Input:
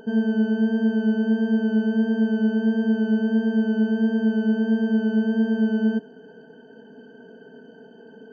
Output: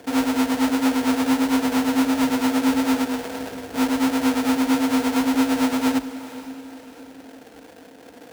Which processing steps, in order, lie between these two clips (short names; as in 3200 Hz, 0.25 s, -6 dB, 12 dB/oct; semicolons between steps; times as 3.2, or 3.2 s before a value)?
3.04–3.73 HPF 270 Hz -> 890 Hz 12 dB/oct; sample-rate reducer 1100 Hz, jitter 20%; frequency shift +41 Hz; diffused feedback echo 0.476 s, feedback 44%, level -14.5 dB